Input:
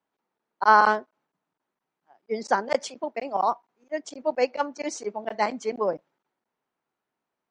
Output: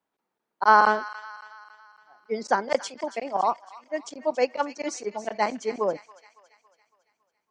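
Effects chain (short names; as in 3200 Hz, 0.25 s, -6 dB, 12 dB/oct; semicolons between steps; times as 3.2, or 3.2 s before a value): thin delay 0.278 s, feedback 51%, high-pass 1500 Hz, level -12.5 dB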